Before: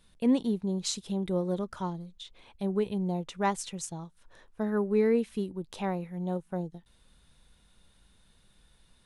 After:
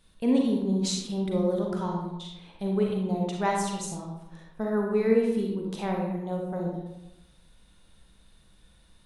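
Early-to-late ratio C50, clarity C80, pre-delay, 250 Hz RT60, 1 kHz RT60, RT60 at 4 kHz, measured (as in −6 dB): 1.5 dB, 5.0 dB, 36 ms, 1.1 s, 0.90 s, 0.55 s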